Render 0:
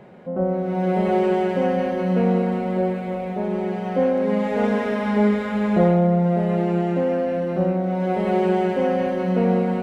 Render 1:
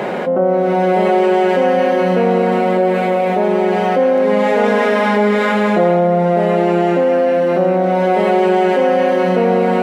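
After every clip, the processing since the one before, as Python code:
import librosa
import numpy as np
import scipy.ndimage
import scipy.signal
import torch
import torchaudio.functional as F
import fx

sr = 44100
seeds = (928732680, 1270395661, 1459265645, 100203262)

y = scipy.signal.sosfilt(scipy.signal.bessel(2, 380.0, 'highpass', norm='mag', fs=sr, output='sos'), x)
y = fx.env_flatten(y, sr, amount_pct=70)
y = y * librosa.db_to_amplitude(6.5)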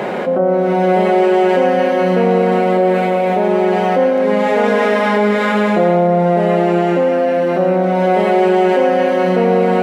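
y = x + 10.0 ** (-12.5 / 20.0) * np.pad(x, (int(114 * sr / 1000.0), 0))[:len(x)]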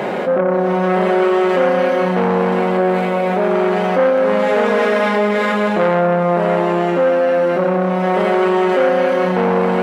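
y = fx.doubler(x, sr, ms=21.0, db=-11.5)
y = fx.transformer_sat(y, sr, knee_hz=960.0)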